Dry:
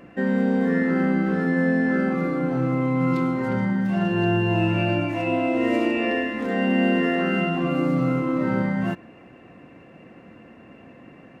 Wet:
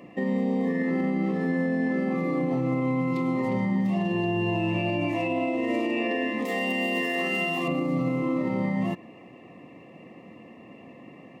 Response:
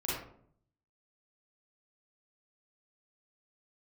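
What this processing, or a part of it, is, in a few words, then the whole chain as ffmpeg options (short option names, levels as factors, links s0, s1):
PA system with an anti-feedback notch: -filter_complex "[0:a]asettb=1/sr,asplit=3[s0][s1][s2];[s0]atrim=end=6.454[s3];[s1]atrim=start=6.45:end=7.68,asetpts=PTS-STARTPTS,afade=t=in:d=0.004:c=qsin,afade=t=out:st=1.226:d=0.004:c=qsin,aemphasis=mode=production:type=riaa[s4];[s2]atrim=start=7.676[s5];[s3][s4]acrossfade=d=0.004:c1=hsin:c2=qsin[s6];[s6][s5]acrossfade=d=0.004:c1=qsin:c2=hsin,highpass=120,asuperstop=centerf=1500:order=8:qfactor=3.2,alimiter=limit=0.126:level=0:latency=1:release=85"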